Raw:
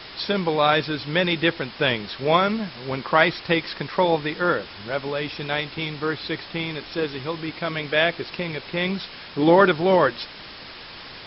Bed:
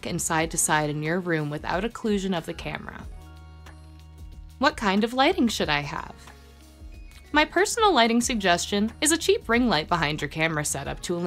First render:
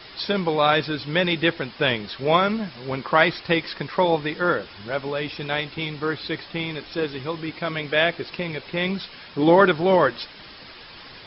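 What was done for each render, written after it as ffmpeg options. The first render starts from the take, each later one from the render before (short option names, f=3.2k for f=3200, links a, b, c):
-af "afftdn=nr=6:nf=-40"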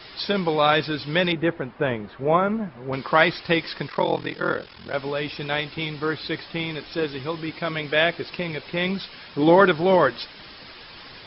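-filter_complex "[0:a]asettb=1/sr,asplit=3[a][b][c];[a]atrim=end=1.324[d];[b]atrim=start=1.32:end=2.93,asetpts=PTS-STARTPTS,afade=t=in:d=0.004:c=qsin,afade=t=out:st=1.606:d=0.004:c=qsin,lowpass=1.4k[e];[c]atrim=start=2.926[f];[d][e]acrossfade=d=0.004:c1=hsin:c2=qsin[g];[g][f]acrossfade=d=0.004:c1=qsin:c2=hsin,asettb=1/sr,asplit=3[h][i][j];[h]atrim=end=3.884[k];[i]atrim=start=3.88:end=4.94,asetpts=PTS-STARTPTS,afade=t=in:d=0.004:c=qsin,afade=t=out:st=1.056:d=0.004:c=qsin,aeval=exprs='val(0)*sin(2*PI*21*n/s)':c=same[l];[j]atrim=start=4.936[m];[k][l]acrossfade=d=0.004:c1=hsin:c2=qsin[n];[n][m]acrossfade=d=0.004:c1=qsin:c2=hsin"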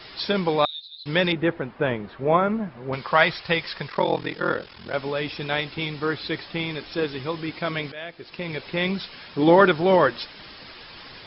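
-filter_complex "[0:a]asettb=1/sr,asplit=3[a][b][c];[a]atrim=end=0.654[d];[b]atrim=start=0.65:end=1.06,asetpts=PTS-STARTPTS,afade=t=in:d=0.004:c=qsin,afade=t=out:st=0.406:d=0.004:c=qsin,asuperpass=centerf=3900:order=4:qfactor=7.7[e];[c]atrim=start=1.056[f];[d][e]acrossfade=d=0.004:c1=hsin:c2=qsin[g];[g][f]acrossfade=d=0.004:c1=qsin:c2=hsin,asettb=1/sr,asplit=3[h][i][j];[h]atrim=end=2.944[k];[i]atrim=start=2.94:end=3.89,asetpts=PTS-STARTPTS,afade=t=in:d=0.004:c=qsin,afade=t=out:st=0.946:d=0.004:c=qsin,equalizer=f=290:w=2:g=-11[l];[j]atrim=start=3.886[m];[k][l]acrossfade=d=0.004:c1=hsin:c2=qsin[n];[n][m]acrossfade=d=0.004:c1=qsin:c2=hsin,asplit=2[o][p];[o]atrim=end=7.92,asetpts=PTS-STARTPTS,afade=t=out:st=7.916:d=0.004:c=hsin:silence=0.133352[q];[p]atrim=start=7.92,asetpts=PTS-STARTPTS,afade=t=in:d=0.63:c=qua:silence=0.133352[r];[q][r]concat=n=2:v=0:a=1"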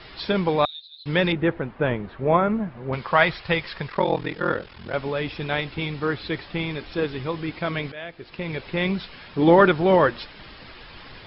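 -af "lowpass=3.7k,lowshelf=f=89:g=11"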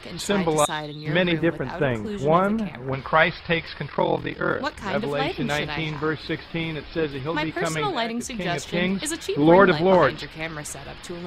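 -filter_complex "[1:a]volume=-7dB[a];[0:a][a]amix=inputs=2:normalize=0"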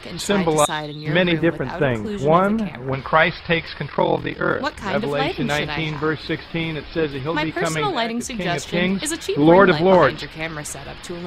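-af "volume=3.5dB,alimiter=limit=-2dB:level=0:latency=1"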